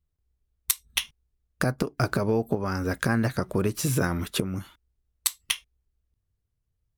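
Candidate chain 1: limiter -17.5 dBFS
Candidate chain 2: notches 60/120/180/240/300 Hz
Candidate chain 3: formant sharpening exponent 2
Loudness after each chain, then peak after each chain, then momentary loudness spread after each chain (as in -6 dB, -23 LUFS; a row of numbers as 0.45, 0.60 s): -31.0, -28.0, -28.0 LUFS; -17.5, -7.0, -6.5 dBFS; 11, 5, 5 LU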